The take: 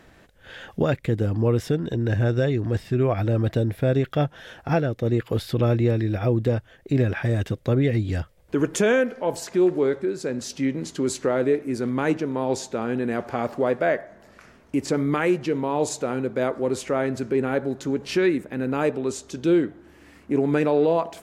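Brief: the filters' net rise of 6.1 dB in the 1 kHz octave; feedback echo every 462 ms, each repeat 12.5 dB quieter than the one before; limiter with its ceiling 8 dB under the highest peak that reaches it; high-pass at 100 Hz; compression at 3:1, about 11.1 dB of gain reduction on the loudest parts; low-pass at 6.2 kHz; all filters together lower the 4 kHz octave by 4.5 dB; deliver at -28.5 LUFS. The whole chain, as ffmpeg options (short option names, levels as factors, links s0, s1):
-af "highpass=100,lowpass=6200,equalizer=f=1000:t=o:g=8.5,equalizer=f=4000:t=o:g=-5.5,acompressor=threshold=0.0316:ratio=3,alimiter=limit=0.075:level=0:latency=1,aecho=1:1:462|924|1386:0.237|0.0569|0.0137,volume=1.78"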